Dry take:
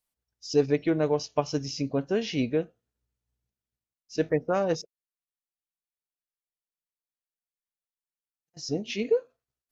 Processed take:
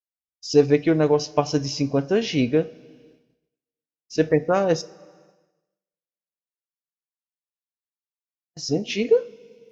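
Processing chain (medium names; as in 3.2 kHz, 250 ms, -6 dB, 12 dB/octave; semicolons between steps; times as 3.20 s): two-slope reverb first 0.39 s, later 2.6 s, from -16 dB, DRR 14 dB; expander -56 dBFS; trim +6 dB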